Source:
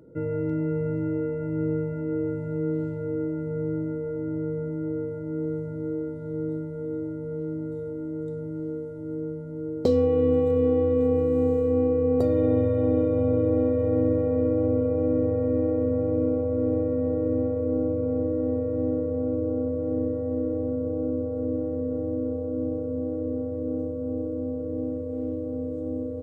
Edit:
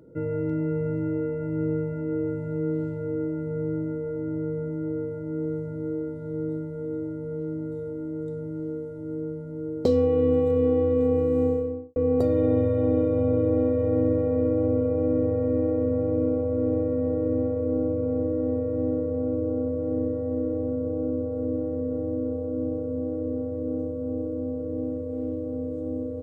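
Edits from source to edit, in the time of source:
11.41–11.96 s: studio fade out

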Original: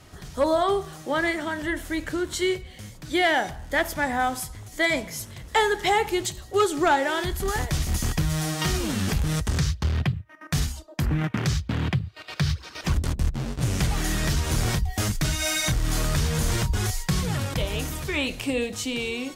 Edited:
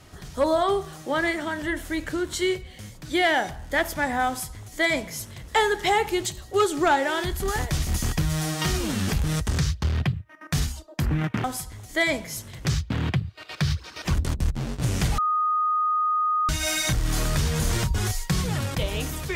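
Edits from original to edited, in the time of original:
4.27–5.48 s: copy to 11.44 s
13.97–15.28 s: bleep 1.24 kHz -20 dBFS

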